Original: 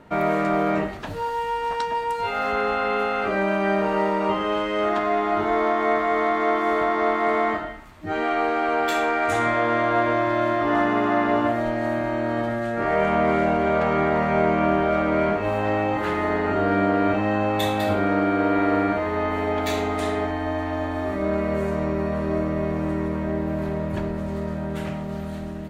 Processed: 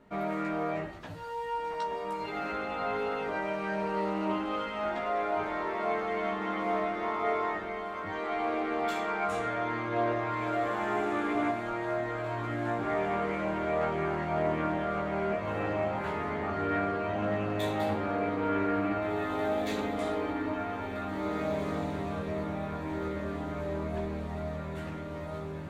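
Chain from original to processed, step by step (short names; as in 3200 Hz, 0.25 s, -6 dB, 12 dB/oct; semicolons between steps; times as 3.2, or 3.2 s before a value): diffused feedback echo 1.931 s, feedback 56%, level -5.5 dB; chorus voices 4, 0.12 Hz, delay 15 ms, depth 4.6 ms; Doppler distortion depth 0.11 ms; gain -7.5 dB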